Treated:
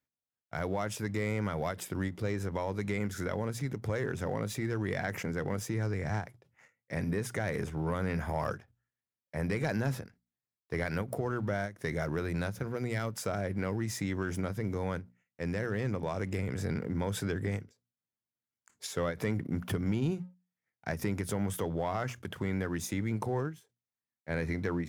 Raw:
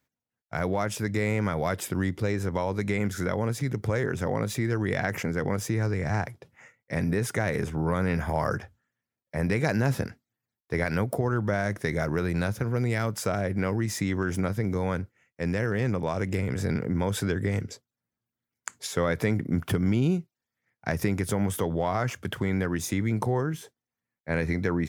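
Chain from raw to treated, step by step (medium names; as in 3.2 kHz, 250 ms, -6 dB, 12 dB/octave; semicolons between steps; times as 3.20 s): hum notches 60/120/180/240 Hz; waveshaping leveller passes 1; endings held to a fixed fall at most 210 dB/s; trim -9 dB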